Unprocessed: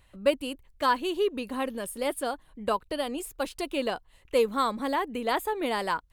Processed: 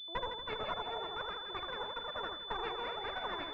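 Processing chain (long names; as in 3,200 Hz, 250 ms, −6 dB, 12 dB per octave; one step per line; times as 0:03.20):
delay that plays each chunk backwards 346 ms, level −10 dB
high-pass filter 150 Hz 12 dB per octave
notch filter 470 Hz, Q 14
asymmetric clip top −30 dBFS, bottom −15 dBFS
formants moved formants +5 semitones
delay that swaps between a low-pass and a high-pass 139 ms, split 960 Hz, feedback 58%, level −3 dB
wrong playback speed 45 rpm record played at 78 rpm
switching amplifier with a slow clock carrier 3,500 Hz
level −8 dB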